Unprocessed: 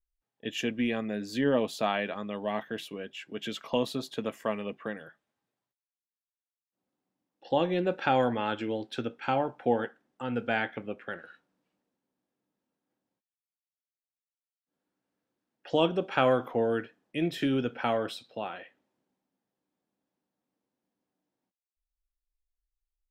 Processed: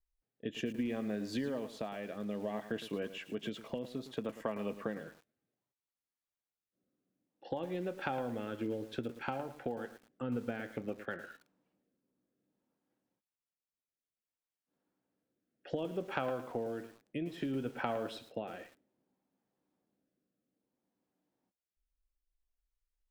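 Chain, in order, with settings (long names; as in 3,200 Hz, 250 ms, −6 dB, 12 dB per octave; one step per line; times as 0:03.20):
high-shelf EQ 2,100 Hz −8.5 dB
downward compressor 16 to 1, threshold −35 dBFS, peak gain reduction 16 dB
rotating-speaker cabinet horn 0.6 Hz
feedback echo at a low word length 111 ms, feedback 35%, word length 9 bits, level −12 dB
level +3.5 dB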